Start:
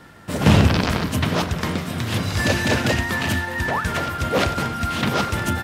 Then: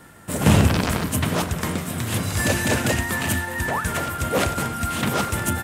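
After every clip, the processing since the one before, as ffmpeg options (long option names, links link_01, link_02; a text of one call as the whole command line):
ffmpeg -i in.wav -af "highshelf=frequency=6500:width_type=q:width=1.5:gain=8,volume=-1.5dB" out.wav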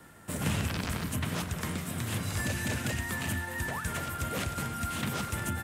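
ffmpeg -i in.wav -filter_complex "[0:a]acrossover=split=220|1300|2700[link_01][link_02][link_03][link_04];[link_01]acompressor=threshold=-24dB:ratio=4[link_05];[link_02]acompressor=threshold=-34dB:ratio=4[link_06];[link_03]acompressor=threshold=-32dB:ratio=4[link_07];[link_04]acompressor=threshold=-32dB:ratio=4[link_08];[link_05][link_06][link_07][link_08]amix=inputs=4:normalize=0,volume=-6.5dB" out.wav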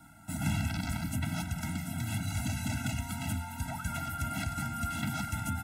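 ffmpeg -i in.wav -af "afftfilt=real='re*eq(mod(floor(b*sr/1024/320),2),0)':imag='im*eq(mod(floor(b*sr/1024/320),2),0)':win_size=1024:overlap=0.75" out.wav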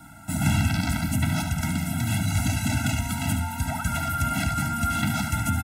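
ffmpeg -i in.wav -af "aecho=1:1:72:0.376,volume=8.5dB" out.wav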